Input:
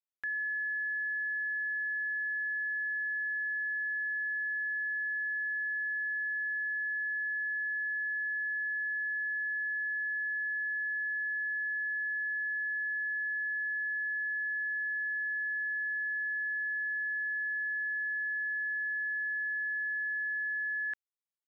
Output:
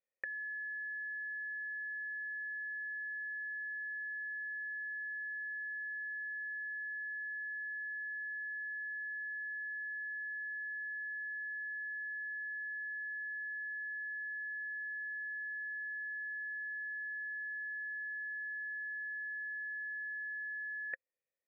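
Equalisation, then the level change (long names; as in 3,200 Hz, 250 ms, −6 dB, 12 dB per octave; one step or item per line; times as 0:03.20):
formant resonators in series e
notch filter 1,700 Hz, Q 22
+18.0 dB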